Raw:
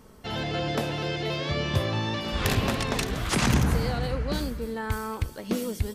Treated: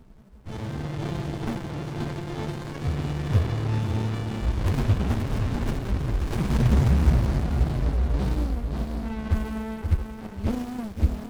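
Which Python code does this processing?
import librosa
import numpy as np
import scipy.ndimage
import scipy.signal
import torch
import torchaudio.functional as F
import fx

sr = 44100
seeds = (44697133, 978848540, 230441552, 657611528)

p1 = fx.low_shelf(x, sr, hz=130.0, db=7.5)
p2 = fx.stretch_vocoder(p1, sr, factor=1.9)
p3 = p2 + fx.echo_feedback(p2, sr, ms=529, feedback_pct=37, wet_db=-7, dry=0)
y = fx.running_max(p3, sr, window=65)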